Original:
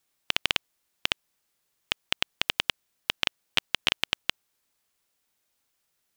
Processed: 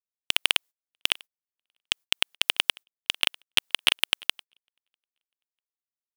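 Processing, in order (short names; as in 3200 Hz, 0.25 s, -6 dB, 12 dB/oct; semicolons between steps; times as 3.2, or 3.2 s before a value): sample leveller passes 2; HPF 330 Hz 6 dB/oct; high shelf 8400 Hz +6 dB; on a send: feedback echo 0.646 s, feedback 28%, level -24 dB; on the sum: gate -41 dBFS, range -28 dB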